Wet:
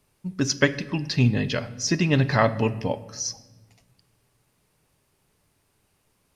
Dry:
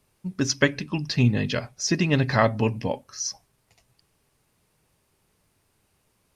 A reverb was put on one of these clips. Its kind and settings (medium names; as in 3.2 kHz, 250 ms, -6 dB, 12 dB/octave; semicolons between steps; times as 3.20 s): simulated room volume 830 m³, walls mixed, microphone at 0.32 m